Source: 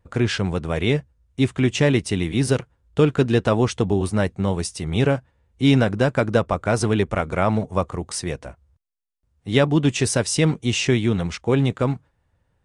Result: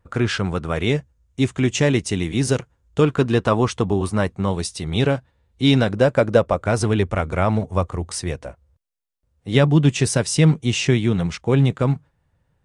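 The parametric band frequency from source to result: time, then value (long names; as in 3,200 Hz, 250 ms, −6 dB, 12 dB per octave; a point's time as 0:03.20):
parametric band +6.5 dB 0.46 octaves
1,300 Hz
from 0:00.81 6,700 Hz
from 0:03.01 1,100 Hz
from 0:04.51 3,900 Hz
from 0:05.93 550 Hz
from 0:06.64 87 Hz
from 0:08.44 530 Hz
from 0:09.55 150 Hz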